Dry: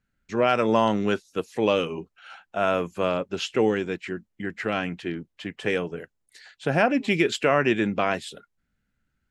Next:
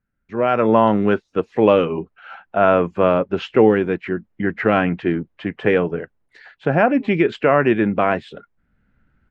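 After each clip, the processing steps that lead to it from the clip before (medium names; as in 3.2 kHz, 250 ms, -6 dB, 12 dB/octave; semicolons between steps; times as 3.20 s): low-pass 1.8 kHz 12 dB/octave; level rider gain up to 16 dB; trim -1 dB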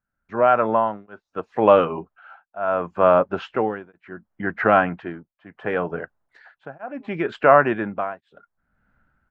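high-order bell 980 Hz +9 dB; tremolo triangle 0.7 Hz, depth 100%; trim -4 dB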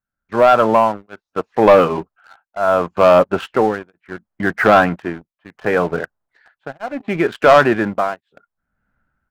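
waveshaping leveller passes 2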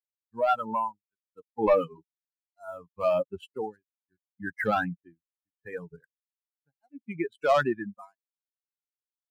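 expander on every frequency bin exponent 3; trim -8.5 dB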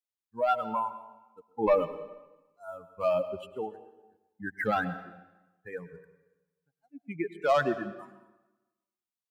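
reverberation RT60 1.1 s, pre-delay 95 ms, DRR 13 dB; trim -2 dB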